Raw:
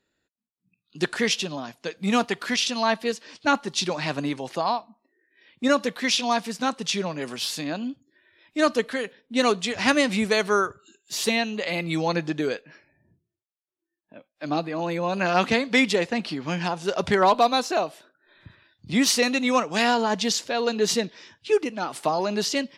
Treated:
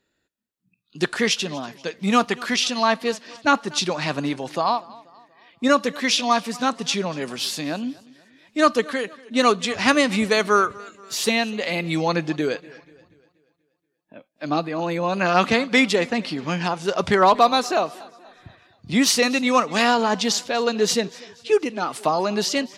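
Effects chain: dynamic EQ 1200 Hz, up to +6 dB, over -42 dBFS, Q 6.6; warbling echo 0.24 s, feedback 46%, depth 76 cents, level -22 dB; gain +2.5 dB

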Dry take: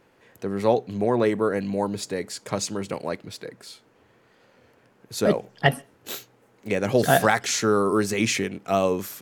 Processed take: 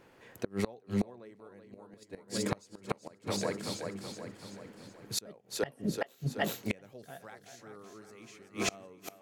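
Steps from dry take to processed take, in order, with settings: split-band echo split 310 Hz, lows 0.58 s, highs 0.378 s, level -7 dB; flipped gate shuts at -18 dBFS, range -30 dB

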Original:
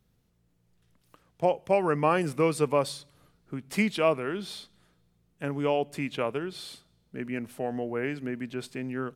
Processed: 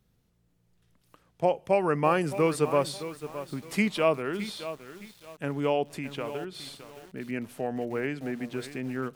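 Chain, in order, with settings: 5.91–7.29 compressor 2:1, threshold -35 dBFS, peak gain reduction 6.5 dB; lo-fi delay 0.616 s, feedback 35%, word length 7-bit, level -12 dB

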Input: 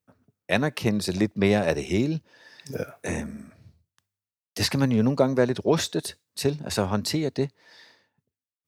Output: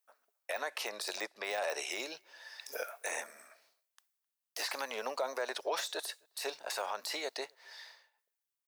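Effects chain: 0.6–1.9 LPF 12000 Hz 12 dB/oct; de-esser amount 80%; HPF 620 Hz 24 dB/oct; high shelf 9400 Hz +7.5 dB; limiter -25 dBFS, peak gain reduction 11 dB; speakerphone echo 0.26 s, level -30 dB

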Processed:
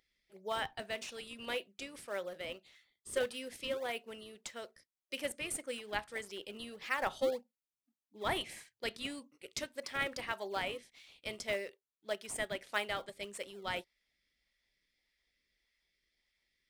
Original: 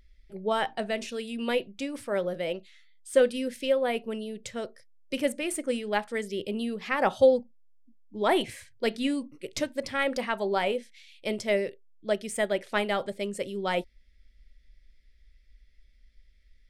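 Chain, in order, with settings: HPF 1400 Hz 6 dB/oct; in parallel at -12 dB: decimation with a swept rate 32×, swing 160% 1.7 Hz; on the sum: gain -4.5 dB

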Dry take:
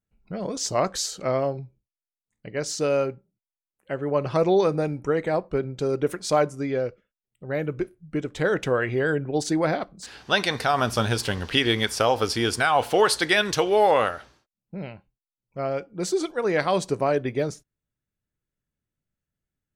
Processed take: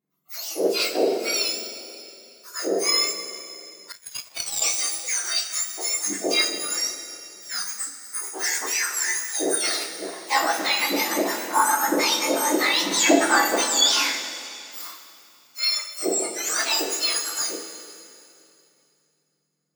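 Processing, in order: spectrum mirrored in octaves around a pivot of 1700 Hz; two-slope reverb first 0.24 s, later 2.7 s, from -17 dB, DRR -5 dB; 3.92–4.62 power-law curve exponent 2; gain -1 dB

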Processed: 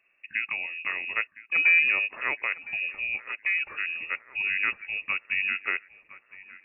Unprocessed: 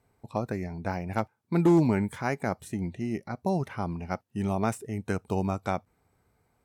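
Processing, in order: 2.92–5.12 notch 2000 Hz, Q 8.3; thinning echo 1.011 s, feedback 53%, high-pass 350 Hz, level -16 dB; inverted band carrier 2700 Hz

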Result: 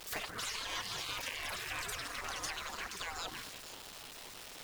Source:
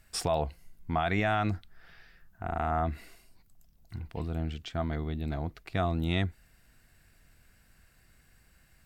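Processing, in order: delta modulation 64 kbps, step -46 dBFS; bell 7200 Hz -6.5 dB 1.3 oct; in parallel at +1 dB: limiter -27.5 dBFS, peak gain reduction 9 dB; on the sum: echoes that change speed 0.116 s, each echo +5 st, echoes 3; bell 470 Hz +8.5 dB 0.26 oct; delay with a stepping band-pass 0.305 s, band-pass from 380 Hz, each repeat 1.4 oct, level -5 dB; compressor, threshold -27 dBFS, peak gain reduction 9 dB; spectral gate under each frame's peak -15 dB weak; added noise pink -63 dBFS; wide varispeed 1.91×; gain +2.5 dB

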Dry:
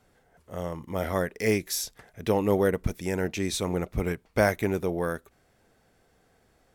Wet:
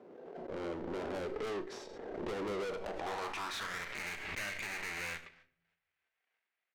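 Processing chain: half-waves squared off; HPF 180 Hz 12 dB/oct; gate -57 dBFS, range -25 dB; LPF 7000 Hz; low shelf 440 Hz -5 dB; compressor, threshold -22 dBFS, peak gain reduction 8.5 dB; band-pass sweep 380 Hz -> 2200 Hz, 2.47–3.9; tube stage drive 46 dB, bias 0.4; doubler 35 ms -13 dB; on a send at -10 dB: reverb RT60 0.60 s, pre-delay 5 ms; on the sum: backwards sustainer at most 31 dB/s; gain +9 dB

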